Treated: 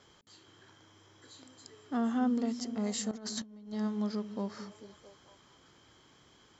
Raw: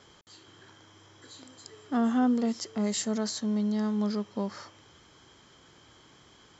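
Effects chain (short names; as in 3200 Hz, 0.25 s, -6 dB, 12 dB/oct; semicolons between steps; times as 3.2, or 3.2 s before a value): delay with a stepping band-pass 0.222 s, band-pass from 200 Hz, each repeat 0.7 oct, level -9 dB; 3.11–3.73 negative-ratio compressor -36 dBFS, ratio -0.5; gain -5 dB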